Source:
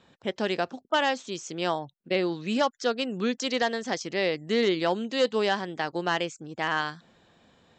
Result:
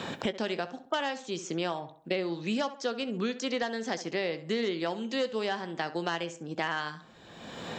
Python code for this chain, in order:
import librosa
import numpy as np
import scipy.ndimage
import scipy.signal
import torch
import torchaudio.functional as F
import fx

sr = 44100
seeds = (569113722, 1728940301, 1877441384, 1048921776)

y = fx.doubler(x, sr, ms=18.0, db=-14)
y = fx.echo_tape(y, sr, ms=66, feedback_pct=35, wet_db=-12, lp_hz=2500.0, drive_db=17.0, wow_cents=17)
y = fx.band_squash(y, sr, depth_pct=100)
y = y * 10.0 ** (-6.0 / 20.0)